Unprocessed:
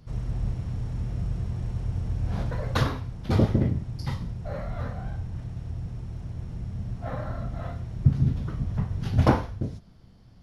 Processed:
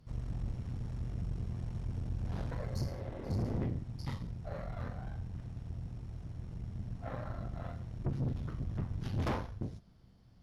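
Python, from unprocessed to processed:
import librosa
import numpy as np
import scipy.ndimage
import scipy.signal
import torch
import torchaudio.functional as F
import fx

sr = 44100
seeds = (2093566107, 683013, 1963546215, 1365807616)

y = fx.spec_repair(x, sr, seeds[0], start_s=2.74, length_s=0.81, low_hz=230.0, high_hz=4200.0, source='both')
y = fx.tube_stage(y, sr, drive_db=25.0, bias=0.7)
y = F.gain(torch.from_numpy(y), -4.5).numpy()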